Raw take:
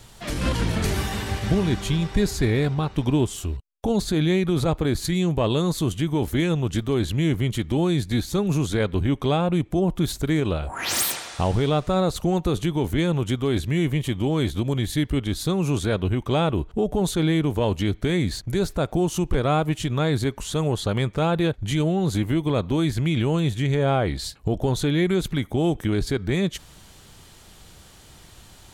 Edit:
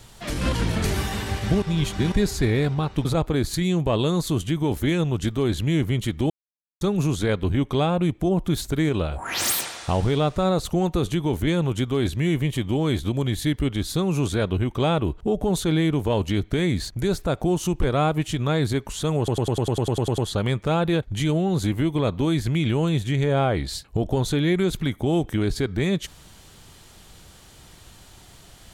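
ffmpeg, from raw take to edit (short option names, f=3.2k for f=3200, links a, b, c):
-filter_complex "[0:a]asplit=16[a][b][c][d][e][f][g][h][i][j][k][l][m][n][o][p];[a]atrim=end=1.622[q];[b]atrim=start=1.618:end=2.122,asetpts=PTS-STARTPTS,areverse[r];[c]atrim=start=2.118:end=3.052[s];[d]atrim=start=4.558:end=7.81,asetpts=PTS-STARTPTS,afade=t=out:st=3.248:d=0.004:c=hsin[t];[e]atrim=start=7.81:end=8.32,asetpts=PTS-STARTPTS,volume=0[u];[f]atrim=start=8.32:end=20.792,asetpts=PTS-STARTPTS,afade=t=in:d=0.004:c=hsin[v];[g]atrim=start=20.688:end=20.792[w];[h]atrim=start=20.688:end=20.792[x];[i]atrim=start=20.688:end=20.792[y];[j]atrim=start=20.688:end=20.792[z];[k]atrim=start=20.688:end=20.792[aa];[l]atrim=start=20.688:end=20.792[ab];[m]atrim=start=20.688:end=20.792[ac];[n]atrim=start=20.688:end=20.792[ad];[o]atrim=start=20.688:end=20.792[ae];[p]atrim=start=20.688[af];[q][r]acrossfade=d=0.004:c1=hsin:c2=hsin[ag];[ag][s]acrossfade=d=0.004:c1=hsin:c2=hsin[ah];[t][u][v]concat=n=3:v=0:a=1[ai];[ah][ai]acrossfade=d=0.004:c1=hsin:c2=hsin[aj];[aj][w]acrossfade=d=0.004:c1=hsin:c2=hsin[ak];[ak][x]acrossfade=d=0.004:c1=hsin:c2=hsin[al];[al][y]acrossfade=d=0.004:c1=hsin:c2=hsin[am];[am][z]acrossfade=d=0.004:c1=hsin:c2=hsin[an];[an][aa]acrossfade=d=0.004:c1=hsin:c2=hsin[ao];[ao][ab]acrossfade=d=0.004:c1=hsin:c2=hsin[ap];[ap][ac]acrossfade=d=0.004:c1=hsin:c2=hsin[aq];[aq][ad]acrossfade=d=0.004:c1=hsin:c2=hsin[ar];[ar][ae]acrossfade=d=0.004:c1=hsin:c2=hsin[as];[as][af]acrossfade=d=0.004:c1=hsin:c2=hsin"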